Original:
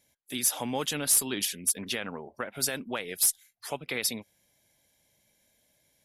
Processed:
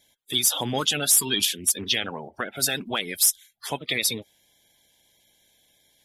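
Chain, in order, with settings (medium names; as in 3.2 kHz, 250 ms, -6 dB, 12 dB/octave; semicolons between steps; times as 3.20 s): coarse spectral quantiser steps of 30 dB; peaking EQ 3.4 kHz +10 dB 0.34 oct; trim +5 dB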